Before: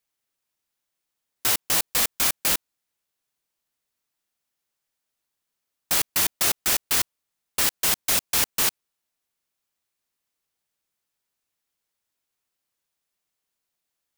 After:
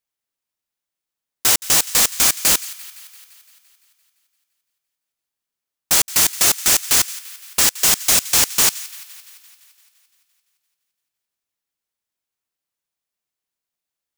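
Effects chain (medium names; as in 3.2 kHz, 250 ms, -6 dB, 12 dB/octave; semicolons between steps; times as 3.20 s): waveshaping leveller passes 2; feedback echo behind a high-pass 171 ms, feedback 65%, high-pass 1.6 kHz, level -17 dB; dynamic bell 6.9 kHz, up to +6 dB, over -34 dBFS, Q 1.2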